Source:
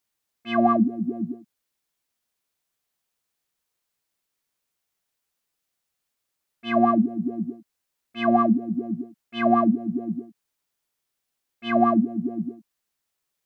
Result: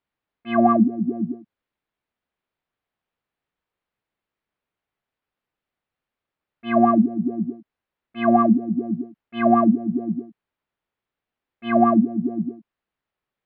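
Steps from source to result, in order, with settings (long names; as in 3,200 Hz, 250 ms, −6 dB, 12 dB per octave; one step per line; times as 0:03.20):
high-frequency loss of the air 430 metres
level +4 dB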